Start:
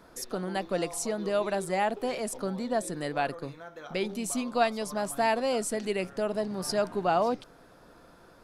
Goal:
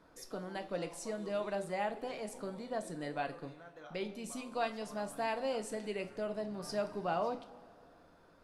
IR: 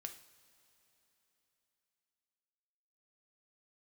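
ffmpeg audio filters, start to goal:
-filter_complex "[0:a]highshelf=frequency=7100:gain=-9[link_01];[1:a]atrim=start_sample=2205,asetrate=74970,aresample=44100[link_02];[link_01][link_02]afir=irnorm=-1:irlink=0,volume=1dB"

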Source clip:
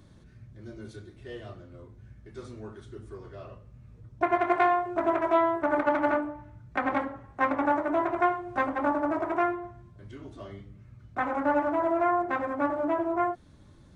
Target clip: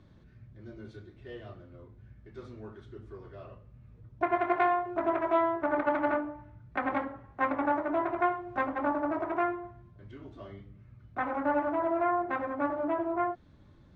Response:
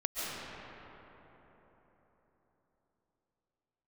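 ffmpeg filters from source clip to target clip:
-af "lowpass=3800,volume=-3dB"

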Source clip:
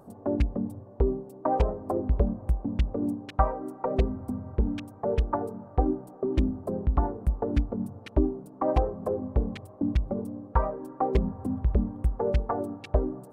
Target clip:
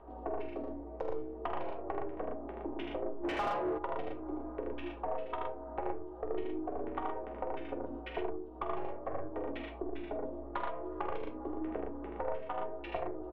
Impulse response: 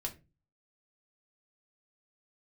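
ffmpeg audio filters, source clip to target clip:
-filter_complex "[0:a]highpass=frequency=270:width_type=q:width=0.5412,highpass=frequency=270:width_type=q:width=1.307,lowpass=frequency=3100:width_type=q:width=0.5176,lowpass=frequency=3100:width_type=q:width=0.7071,lowpass=frequency=3100:width_type=q:width=1.932,afreqshift=56,asettb=1/sr,asplit=3[link_01][link_02][link_03];[link_01]atrim=end=0.424[link_04];[link_02]atrim=start=0.42:end=1.36,asetpts=PTS-STARTPTS,afade=type=in:duration=0.004:curve=qsin,afade=type=out:start_time=0.936:duration=0.004:curve=qsin,adynamicsmooth=sensitivity=6.5:basefreq=1300[link_05];[link_03]atrim=start=1.356[link_06];[link_04][link_05]acrossfade=duration=0.004:curve1=hsin:curve2=qsin[link_07];[link_07][link_06]acrossfade=duration=0.004:curve1=qsin:curve2=hsin,flanger=delay=9:depth=4.8:regen=-62:speed=0.55:shape=sinusoidal,aeval=exprs='val(0)+0.000708*(sin(2*PI*60*n/s)+sin(2*PI*2*60*n/s)/2+sin(2*PI*3*60*n/s)/3+sin(2*PI*4*60*n/s)/4+sin(2*PI*5*60*n/s)/5)':channel_layout=same,aeval=exprs='0.178*(cos(1*acos(clip(val(0)/0.178,-1,1)))-cos(1*PI/2))+0.0251*(cos(2*acos(clip(val(0)/0.178,-1,1)))-cos(2*PI/2))+0.0398*(cos(3*acos(clip(val(0)/0.178,-1,1)))-cos(3*PI/2))':channel_layout=same[link_08];[1:a]atrim=start_sample=2205,afade=type=out:start_time=0.14:duration=0.01,atrim=end_sample=6615[link_09];[link_08][link_09]afir=irnorm=-1:irlink=0,acompressor=threshold=-49dB:ratio=12,aecho=1:1:46.65|78.72|116.6:0.355|0.708|0.562,asplit=3[link_10][link_11][link_12];[link_10]afade=type=out:start_time=3.23:duration=0.02[link_13];[link_11]asplit=2[link_14][link_15];[link_15]highpass=frequency=720:poles=1,volume=27dB,asoftclip=type=tanh:threshold=-37dB[link_16];[link_14][link_16]amix=inputs=2:normalize=0,lowpass=frequency=1000:poles=1,volume=-6dB,afade=type=in:start_time=3.23:duration=0.02,afade=type=out:start_time=3.77:duration=0.02[link_17];[link_12]afade=type=in:start_time=3.77:duration=0.02[link_18];[link_13][link_17][link_18]amix=inputs=3:normalize=0,volume=13.5dB"

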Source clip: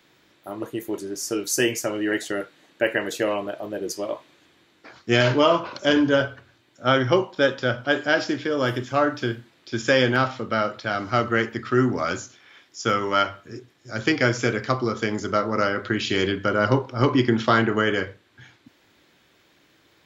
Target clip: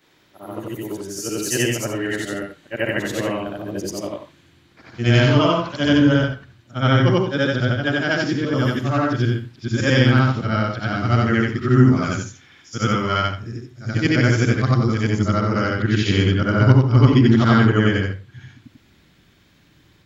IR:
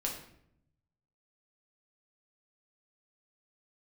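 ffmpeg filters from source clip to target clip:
-af "afftfilt=real='re':imag='-im':win_size=8192:overlap=0.75,asubboost=boost=5:cutoff=210,volume=6dB"

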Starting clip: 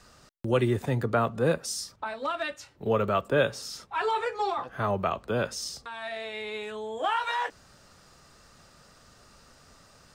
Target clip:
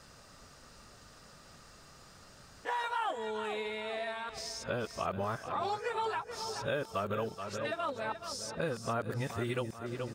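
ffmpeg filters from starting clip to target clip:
ffmpeg -i in.wav -filter_complex "[0:a]areverse,aecho=1:1:427|854|1281|1708|2135:0.211|0.11|0.0571|0.0297|0.0155,acrossover=split=1200|7600[link_01][link_02][link_03];[link_01]acompressor=threshold=-34dB:ratio=4[link_04];[link_02]acompressor=threshold=-41dB:ratio=4[link_05];[link_03]acompressor=threshold=-58dB:ratio=4[link_06];[link_04][link_05][link_06]amix=inputs=3:normalize=0" out.wav

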